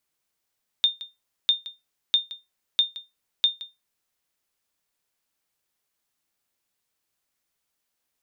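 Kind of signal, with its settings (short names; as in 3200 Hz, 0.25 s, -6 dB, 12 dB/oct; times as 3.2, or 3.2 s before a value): sonar ping 3630 Hz, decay 0.20 s, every 0.65 s, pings 5, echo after 0.17 s, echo -17.5 dB -11 dBFS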